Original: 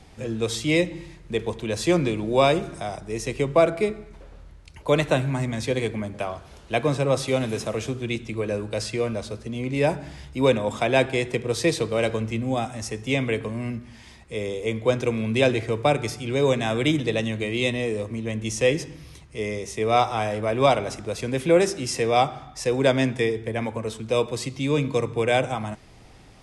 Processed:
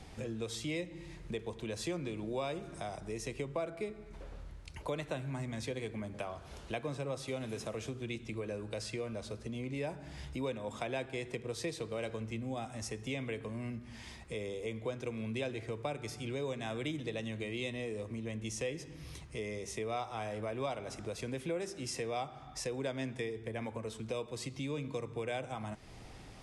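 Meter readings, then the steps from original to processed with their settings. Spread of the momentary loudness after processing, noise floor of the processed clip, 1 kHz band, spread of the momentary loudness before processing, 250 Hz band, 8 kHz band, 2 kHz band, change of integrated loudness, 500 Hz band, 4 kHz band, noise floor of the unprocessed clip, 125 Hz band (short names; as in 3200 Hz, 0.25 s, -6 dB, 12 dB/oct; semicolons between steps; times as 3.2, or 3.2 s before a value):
5 LU, -51 dBFS, -16.5 dB, 11 LU, -14.5 dB, -11.5 dB, -15.0 dB, -15.5 dB, -16.0 dB, -14.5 dB, -48 dBFS, -14.0 dB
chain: compressor 3:1, threshold -38 dBFS, peak gain reduction 19 dB; gain -2 dB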